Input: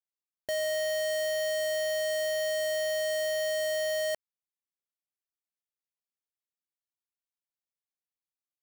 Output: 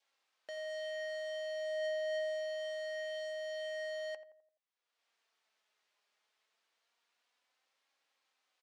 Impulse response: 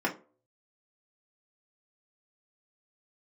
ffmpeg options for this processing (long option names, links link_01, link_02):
-filter_complex "[0:a]flanger=delay=3.6:depth=1.3:regen=67:speed=0.25:shape=triangular,acompressor=mode=upward:threshold=-44dB:ratio=2.5,highpass=540,lowpass=4100,asplit=2[link_01][link_02];[link_02]adelay=85,lowpass=frequency=1200:poles=1,volume=-11.5dB,asplit=2[link_03][link_04];[link_04]adelay=85,lowpass=frequency=1200:poles=1,volume=0.5,asplit=2[link_05][link_06];[link_06]adelay=85,lowpass=frequency=1200:poles=1,volume=0.5,asplit=2[link_07][link_08];[link_08]adelay=85,lowpass=frequency=1200:poles=1,volume=0.5,asplit=2[link_09][link_10];[link_10]adelay=85,lowpass=frequency=1200:poles=1,volume=0.5[link_11];[link_03][link_05][link_07][link_09][link_11]amix=inputs=5:normalize=0[link_12];[link_01][link_12]amix=inputs=2:normalize=0,adynamicequalizer=threshold=0.00282:dfrequency=1300:dqfactor=1.8:tfrequency=1300:tqfactor=1.8:attack=5:release=100:ratio=0.375:range=2:mode=cutabove:tftype=bell,volume=-5.5dB"